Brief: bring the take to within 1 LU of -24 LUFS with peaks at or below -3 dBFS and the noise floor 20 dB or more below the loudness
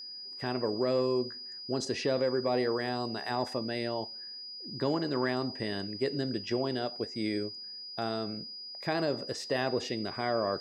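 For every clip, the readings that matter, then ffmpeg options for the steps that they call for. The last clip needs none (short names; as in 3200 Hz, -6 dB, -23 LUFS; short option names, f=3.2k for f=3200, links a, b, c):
steady tone 4900 Hz; tone level -41 dBFS; loudness -32.5 LUFS; peak -16.0 dBFS; loudness target -24.0 LUFS
-> -af "bandreject=f=4.9k:w=30"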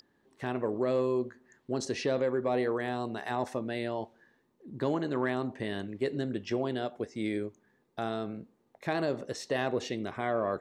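steady tone none; loudness -33.0 LUFS; peak -16.5 dBFS; loudness target -24.0 LUFS
-> -af "volume=9dB"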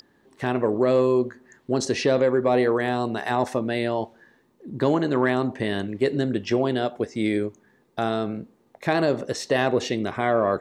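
loudness -24.0 LUFS; peak -7.5 dBFS; noise floor -62 dBFS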